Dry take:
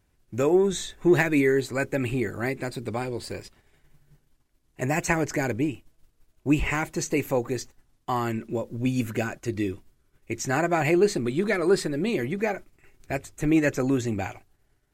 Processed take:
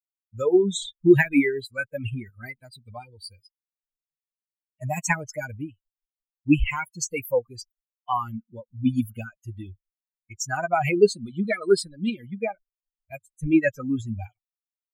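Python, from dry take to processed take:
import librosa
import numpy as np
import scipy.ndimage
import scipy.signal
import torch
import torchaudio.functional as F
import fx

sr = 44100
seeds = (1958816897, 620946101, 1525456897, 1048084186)

y = fx.bin_expand(x, sr, power=3.0)
y = y * librosa.db_to_amplitude(7.5)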